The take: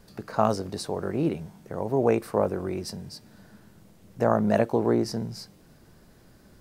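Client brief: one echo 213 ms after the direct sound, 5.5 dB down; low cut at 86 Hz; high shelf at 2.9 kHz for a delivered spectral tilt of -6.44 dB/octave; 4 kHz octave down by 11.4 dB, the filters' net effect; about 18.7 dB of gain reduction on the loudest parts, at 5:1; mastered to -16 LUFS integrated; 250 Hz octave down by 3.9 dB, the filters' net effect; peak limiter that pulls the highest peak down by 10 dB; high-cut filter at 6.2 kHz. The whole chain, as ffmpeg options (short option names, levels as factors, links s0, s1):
-af "highpass=86,lowpass=6200,equalizer=f=250:t=o:g=-5,highshelf=f=2900:g=-6.5,equalizer=f=4000:t=o:g=-7.5,acompressor=threshold=0.01:ratio=5,alimiter=level_in=2.82:limit=0.0631:level=0:latency=1,volume=0.355,aecho=1:1:213:0.531,volume=29.9"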